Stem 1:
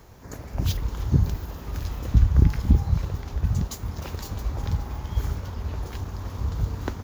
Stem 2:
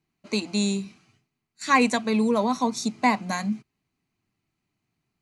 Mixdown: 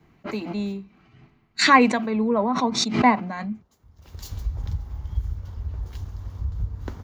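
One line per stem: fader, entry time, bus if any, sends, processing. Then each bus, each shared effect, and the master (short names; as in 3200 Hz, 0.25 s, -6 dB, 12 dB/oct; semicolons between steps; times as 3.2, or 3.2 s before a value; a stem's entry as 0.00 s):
+2.0 dB, 0.00 s, no send, compressor 4:1, threshold -27 dBFS, peak gain reduction 14 dB; auto duck -21 dB, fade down 0.80 s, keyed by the second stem
-2.0 dB, 0.00 s, no send, LPF 2400 Hz 12 dB/oct; backwards sustainer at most 36 dB/s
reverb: off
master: high shelf 5300 Hz -5.5 dB; notch 2500 Hz, Q 19; three-band expander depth 100%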